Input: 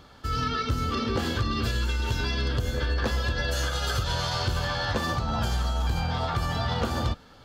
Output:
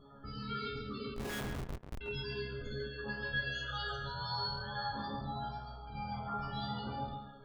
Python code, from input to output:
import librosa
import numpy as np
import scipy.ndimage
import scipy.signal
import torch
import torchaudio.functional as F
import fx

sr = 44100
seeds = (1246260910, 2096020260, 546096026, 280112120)

p1 = fx.over_compress(x, sr, threshold_db=-31.0, ratio=-1.0)
p2 = fx.spec_topn(p1, sr, count=32)
p3 = fx.resonator_bank(p2, sr, root=49, chord='fifth', decay_s=0.54)
p4 = fx.schmitt(p3, sr, flips_db=-46.5, at=(1.14, 2.01))
p5 = p4 + fx.echo_tape(p4, sr, ms=139, feedback_pct=23, wet_db=-3.5, lp_hz=1800.0, drive_db=35.0, wow_cents=24, dry=0)
y = F.gain(torch.from_numpy(p5), 10.5).numpy()